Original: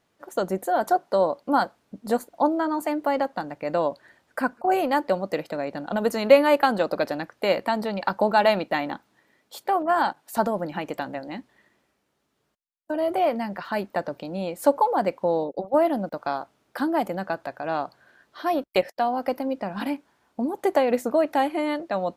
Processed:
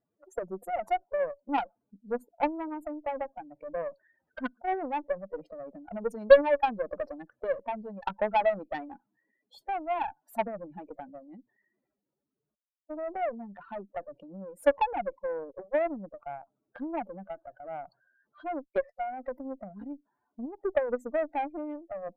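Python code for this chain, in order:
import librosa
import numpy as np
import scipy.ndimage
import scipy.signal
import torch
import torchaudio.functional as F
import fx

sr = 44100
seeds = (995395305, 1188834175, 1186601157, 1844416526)

y = fx.spec_expand(x, sr, power=2.7)
y = fx.cheby_harmonics(y, sr, harmonics=(2, 3, 7, 8), levels_db=(-20, -15, -29, -32), full_scale_db=-6.0)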